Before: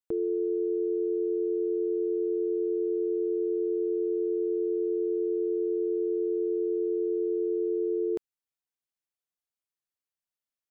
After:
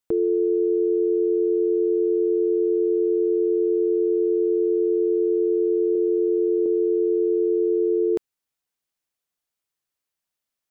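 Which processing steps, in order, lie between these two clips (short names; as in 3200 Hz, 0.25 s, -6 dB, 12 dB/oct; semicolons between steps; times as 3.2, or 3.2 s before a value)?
5.93–6.66 doubler 22 ms -2.5 dB; gain +7.5 dB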